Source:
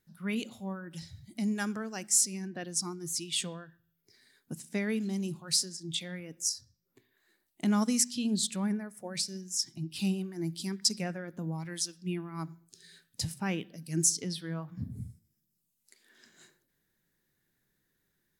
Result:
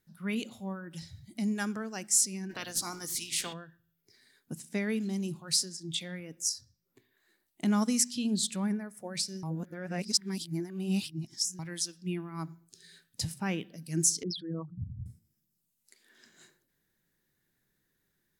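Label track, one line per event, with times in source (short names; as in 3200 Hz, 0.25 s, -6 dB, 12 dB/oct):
2.490000	3.520000	spectral limiter ceiling under each frame's peak by 24 dB
9.430000	11.590000	reverse
14.230000	15.060000	formant sharpening exponent 3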